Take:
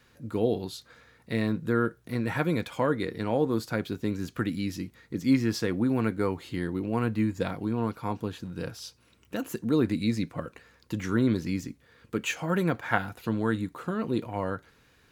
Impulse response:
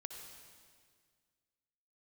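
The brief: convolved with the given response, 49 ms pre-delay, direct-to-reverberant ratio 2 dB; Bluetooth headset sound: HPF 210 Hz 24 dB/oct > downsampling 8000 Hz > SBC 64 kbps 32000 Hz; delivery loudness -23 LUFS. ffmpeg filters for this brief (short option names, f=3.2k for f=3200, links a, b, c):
-filter_complex "[0:a]asplit=2[a][b];[1:a]atrim=start_sample=2205,adelay=49[c];[b][c]afir=irnorm=-1:irlink=0,volume=1.5dB[d];[a][d]amix=inputs=2:normalize=0,highpass=f=210:w=0.5412,highpass=f=210:w=1.3066,aresample=8000,aresample=44100,volume=6dB" -ar 32000 -c:a sbc -b:a 64k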